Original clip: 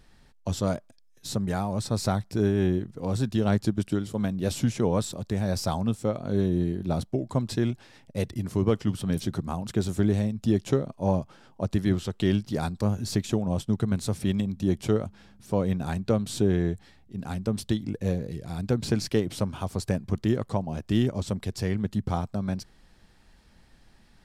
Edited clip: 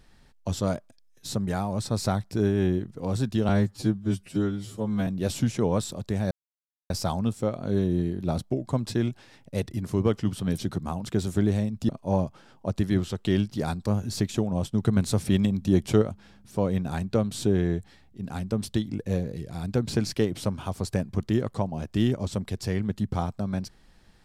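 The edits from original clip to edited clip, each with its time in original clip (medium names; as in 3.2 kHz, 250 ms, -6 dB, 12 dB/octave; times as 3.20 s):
3.49–4.28 s: stretch 2×
5.52 s: insert silence 0.59 s
10.51–10.84 s: delete
13.76–14.97 s: gain +3.5 dB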